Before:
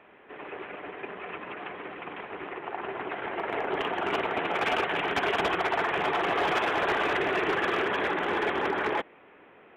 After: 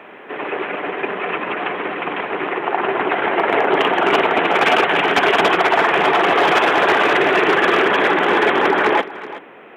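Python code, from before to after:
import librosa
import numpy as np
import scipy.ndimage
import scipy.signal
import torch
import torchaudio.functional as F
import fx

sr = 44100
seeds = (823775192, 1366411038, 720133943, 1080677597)

p1 = scipy.signal.sosfilt(scipy.signal.butter(2, 160.0, 'highpass', fs=sr, output='sos'), x)
p2 = fx.rider(p1, sr, range_db=4, speed_s=0.5)
p3 = p1 + F.gain(torch.from_numpy(p2), 1.5).numpy()
p4 = p3 + 10.0 ** (-16.0 / 20.0) * np.pad(p3, (int(374 * sr / 1000.0), 0))[:len(p3)]
y = F.gain(torch.from_numpy(p4), 6.5).numpy()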